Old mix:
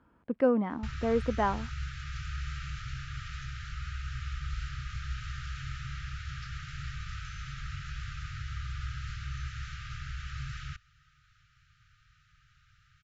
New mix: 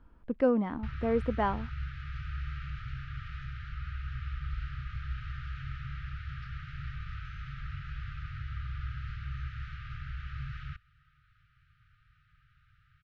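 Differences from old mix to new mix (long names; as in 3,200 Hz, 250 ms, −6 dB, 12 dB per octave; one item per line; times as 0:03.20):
speech: remove band-pass filter 110–2,200 Hz
master: add high-frequency loss of the air 320 metres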